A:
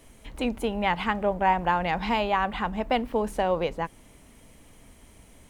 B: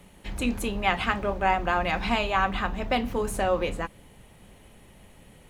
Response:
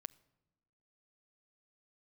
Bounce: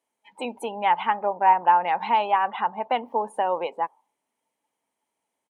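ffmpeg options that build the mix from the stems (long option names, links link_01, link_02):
-filter_complex "[0:a]equalizer=frequency=880:width=3.8:gain=10.5,volume=-1.5dB,asplit=2[link_01][link_02];[1:a]flanger=delay=3.4:depth=1.1:regen=-38:speed=0.95:shape=triangular,aeval=exprs='sgn(val(0))*max(abs(val(0))-0.00562,0)':channel_layout=same,adynamicequalizer=threshold=0.00708:dfrequency=2100:dqfactor=0.7:tfrequency=2100:tqfactor=0.7:attack=5:release=100:ratio=0.375:range=2:mode=boostabove:tftype=highshelf,adelay=3.5,volume=-1.5dB[link_03];[link_02]apad=whole_len=242275[link_04];[link_03][link_04]sidechaincompress=threshold=-32dB:ratio=8:attack=35:release=233[link_05];[link_01][link_05]amix=inputs=2:normalize=0,highpass=360,afftdn=noise_reduction=24:noise_floor=-39"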